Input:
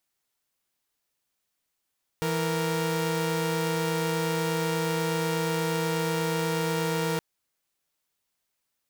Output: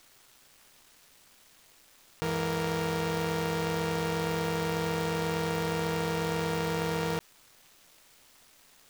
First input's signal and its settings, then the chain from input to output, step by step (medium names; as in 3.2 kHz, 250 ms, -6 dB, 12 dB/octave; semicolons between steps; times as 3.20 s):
chord E3/A#4 saw, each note -25.5 dBFS 4.97 s
dead-time distortion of 0.054 ms; AM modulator 260 Hz, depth 50%; level flattener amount 50%